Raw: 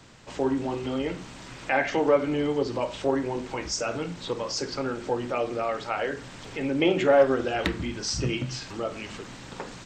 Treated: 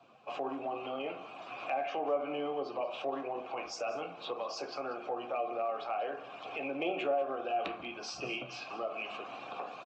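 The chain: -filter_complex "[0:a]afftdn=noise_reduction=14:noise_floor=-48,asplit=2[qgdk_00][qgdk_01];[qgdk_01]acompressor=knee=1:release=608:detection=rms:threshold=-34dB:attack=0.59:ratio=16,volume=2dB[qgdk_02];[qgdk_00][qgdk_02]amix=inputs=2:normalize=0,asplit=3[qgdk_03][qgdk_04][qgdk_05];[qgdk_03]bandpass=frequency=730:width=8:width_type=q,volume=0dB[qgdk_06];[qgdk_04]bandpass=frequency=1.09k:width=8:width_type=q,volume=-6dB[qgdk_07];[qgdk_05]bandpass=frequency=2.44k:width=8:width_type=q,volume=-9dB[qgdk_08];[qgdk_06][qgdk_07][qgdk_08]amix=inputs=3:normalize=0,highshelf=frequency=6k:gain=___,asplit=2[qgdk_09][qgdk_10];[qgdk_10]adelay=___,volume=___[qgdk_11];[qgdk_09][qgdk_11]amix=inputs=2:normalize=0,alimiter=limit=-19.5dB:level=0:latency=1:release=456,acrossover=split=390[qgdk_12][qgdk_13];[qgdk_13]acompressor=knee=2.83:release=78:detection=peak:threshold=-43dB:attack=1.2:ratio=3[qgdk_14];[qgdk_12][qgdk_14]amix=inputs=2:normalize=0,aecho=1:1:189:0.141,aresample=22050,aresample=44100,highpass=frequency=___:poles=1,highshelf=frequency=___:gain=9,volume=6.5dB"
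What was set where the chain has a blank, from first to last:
-10.5, 14, -12.5dB, 130, 2.4k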